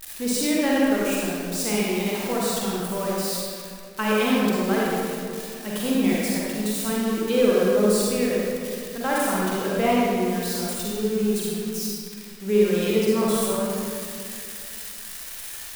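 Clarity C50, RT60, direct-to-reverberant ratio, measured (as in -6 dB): -4.5 dB, 2.2 s, -6.0 dB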